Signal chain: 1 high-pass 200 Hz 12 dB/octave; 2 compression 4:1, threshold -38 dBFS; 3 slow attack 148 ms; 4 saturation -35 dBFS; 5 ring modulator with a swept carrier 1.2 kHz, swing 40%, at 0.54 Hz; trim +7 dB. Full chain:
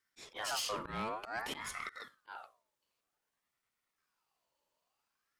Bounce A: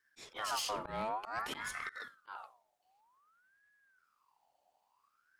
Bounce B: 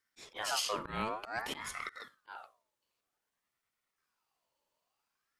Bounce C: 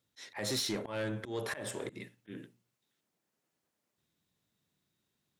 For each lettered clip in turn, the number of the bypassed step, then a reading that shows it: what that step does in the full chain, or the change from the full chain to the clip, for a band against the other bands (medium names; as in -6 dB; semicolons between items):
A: 1, 1 kHz band +3.5 dB; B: 4, distortion -14 dB; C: 5, crest factor change -3.0 dB